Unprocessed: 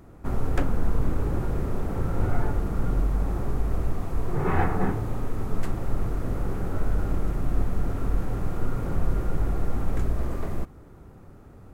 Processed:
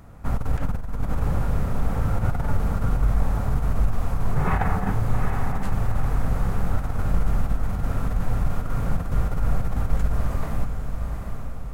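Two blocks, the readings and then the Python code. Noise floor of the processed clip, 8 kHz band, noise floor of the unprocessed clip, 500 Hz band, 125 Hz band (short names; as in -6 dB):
-29 dBFS, n/a, -48 dBFS, -1.5 dB, +3.5 dB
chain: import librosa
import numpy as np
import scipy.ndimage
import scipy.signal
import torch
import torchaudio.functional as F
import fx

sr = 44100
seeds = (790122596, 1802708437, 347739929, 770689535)

p1 = fx.peak_eq(x, sr, hz=350.0, db=-13.5, octaves=0.66)
p2 = fx.over_compress(p1, sr, threshold_db=-22.0, ratio=-0.5)
p3 = p2 + fx.echo_diffused(p2, sr, ms=787, feedback_pct=51, wet_db=-6.0, dry=0)
y = p3 * librosa.db_to_amplitude(3.0)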